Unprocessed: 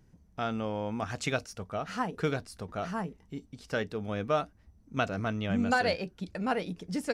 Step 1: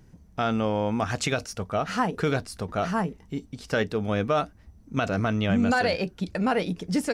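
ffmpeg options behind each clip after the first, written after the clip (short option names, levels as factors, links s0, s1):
-af "alimiter=limit=0.075:level=0:latency=1:release=42,volume=2.51"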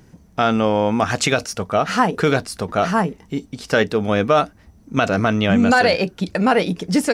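-af "lowshelf=f=92:g=-11.5,volume=2.82"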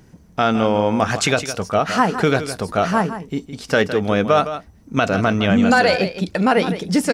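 -af "aecho=1:1:161:0.266"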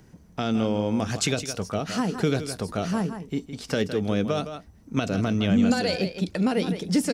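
-filter_complex "[0:a]acrossover=split=450|3000[s0][s1][s2];[s1]acompressor=threshold=0.0224:ratio=3[s3];[s0][s3][s2]amix=inputs=3:normalize=0,volume=0.631"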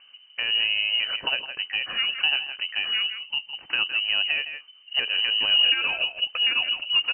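-af "lowpass=f=2600:t=q:w=0.5098,lowpass=f=2600:t=q:w=0.6013,lowpass=f=2600:t=q:w=0.9,lowpass=f=2600:t=q:w=2.563,afreqshift=-3100"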